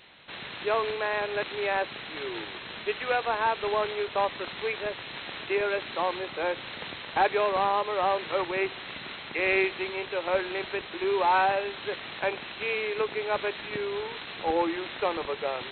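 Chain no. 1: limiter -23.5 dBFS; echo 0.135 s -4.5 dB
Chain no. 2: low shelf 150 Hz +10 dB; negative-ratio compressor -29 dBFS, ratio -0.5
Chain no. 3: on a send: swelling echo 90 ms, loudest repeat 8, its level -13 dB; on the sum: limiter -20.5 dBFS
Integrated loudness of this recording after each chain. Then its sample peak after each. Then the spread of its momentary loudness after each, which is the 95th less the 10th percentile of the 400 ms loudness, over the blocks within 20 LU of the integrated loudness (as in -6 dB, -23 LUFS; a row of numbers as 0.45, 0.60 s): -32.0, -31.5, -29.5 LUFS; -19.5, -14.0, -20.5 dBFS; 5, 6, 2 LU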